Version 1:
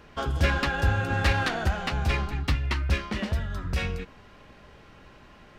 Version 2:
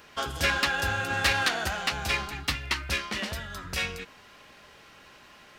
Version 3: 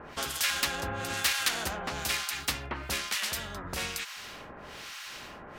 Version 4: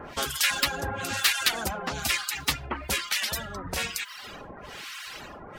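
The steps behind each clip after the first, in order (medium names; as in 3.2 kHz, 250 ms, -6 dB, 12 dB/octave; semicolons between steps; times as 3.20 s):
tilt EQ +3 dB/octave
harmonic tremolo 1.1 Hz, depth 100%, crossover 1.2 kHz; spectrum-flattening compressor 2:1
coarse spectral quantiser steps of 15 dB; reverb removal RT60 0.86 s; trim +5.5 dB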